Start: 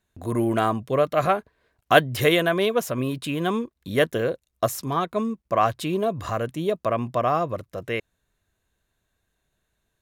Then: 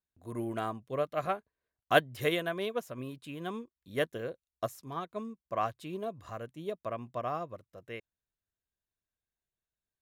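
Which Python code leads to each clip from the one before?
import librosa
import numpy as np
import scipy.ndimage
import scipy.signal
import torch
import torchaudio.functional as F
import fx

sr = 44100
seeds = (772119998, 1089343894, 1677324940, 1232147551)

y = fx.upward_expand(x, sr, threshold_db=-39.0, expansion=1.5)
y = y * 10.0 ** (-7.5 / 20.0)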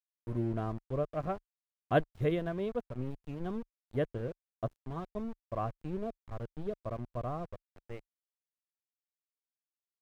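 y = np.where(np.abs(x) >= 10.0 ** (-40.5 / 20.0), x, 0.0)
y = fx.tilt_eq(y, sr, slope=-4.5)
y = y * 10.0 ** (-6.0 / 20.0)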